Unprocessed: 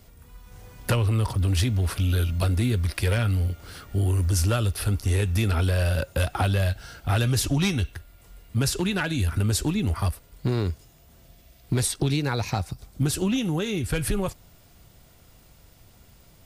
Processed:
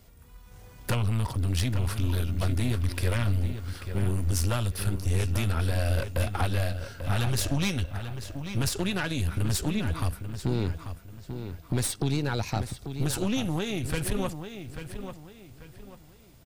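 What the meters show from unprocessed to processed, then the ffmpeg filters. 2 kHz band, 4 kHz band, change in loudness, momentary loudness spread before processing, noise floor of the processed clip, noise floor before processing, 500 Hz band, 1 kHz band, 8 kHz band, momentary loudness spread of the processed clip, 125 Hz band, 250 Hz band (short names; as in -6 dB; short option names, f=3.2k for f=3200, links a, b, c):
-3.5 dB, -3.5 dB, -4.0 dB, 7 LU, -52 dBFS, -54 dBFS, -3.5 dB, -3.0 dB, -3.5 dB, 13 LU, -4.0 dB, -3.5 dB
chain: -filter_complex "[0:a]aeval=exprs='(tanh(11.2*val(0)+0.65)-tanh(0.65))/11.2':c=same,asplit=2[a][b];[b]adelay=840,lowpass=f=4.4k:p=1,volume=-9dB,asplit=2[c][d];[d]adelay=840,lowpass=f=4.4k:p=1,volume=0.34,asplit=2[e][f];[f]adelay=840,lowpass=f=4.4k:p=1,volume=0.34,asplit=2[g][h];[h]adelay=840,lowpass=f=4.4k:p=1,volume=0.34[i];[a][c][e][g][i]amix=inputs=5:normalize=0"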